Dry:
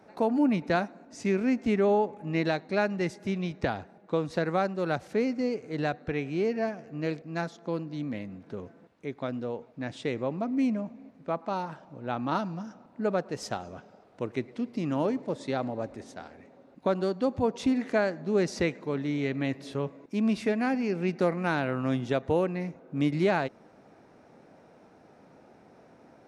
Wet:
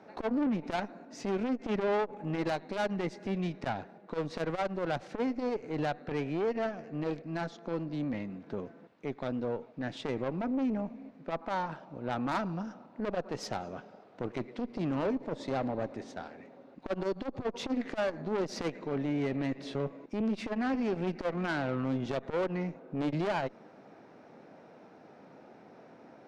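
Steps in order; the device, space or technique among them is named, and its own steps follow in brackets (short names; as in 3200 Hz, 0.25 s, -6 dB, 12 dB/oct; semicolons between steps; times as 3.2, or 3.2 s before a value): valve radio (BPF 140–5100 Hz; tube stage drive 29 dB, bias 0.5; core saturation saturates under 230 Hz); gain +4 dB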